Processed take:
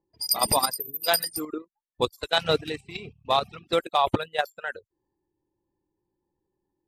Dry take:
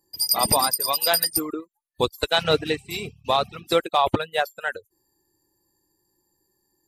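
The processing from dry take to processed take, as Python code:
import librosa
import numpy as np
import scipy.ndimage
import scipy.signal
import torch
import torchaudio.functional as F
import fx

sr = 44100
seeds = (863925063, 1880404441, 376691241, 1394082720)

y = fx.env_lowpass(x, sr, base_hz=910.0, full_db=-20.0)
y = fx.spec_erase(y, sr, start_s=0.8, length_s=0.24, low_hz=460.0, high_hz=10000.0)
y = fx.level_steps(y, sr, step_db=10)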